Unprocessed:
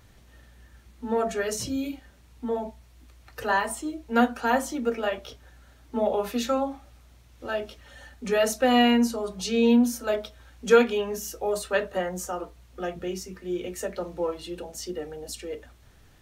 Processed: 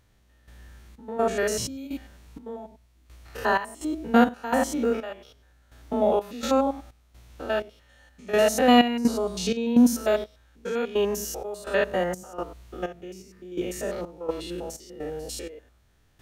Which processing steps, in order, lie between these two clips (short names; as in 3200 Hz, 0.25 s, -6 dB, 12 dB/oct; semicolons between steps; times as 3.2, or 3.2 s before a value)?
stepped spectrum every 0.1 s; step gate "..xx.xx.xx." 63 bpm -12 dB; gain +5 dB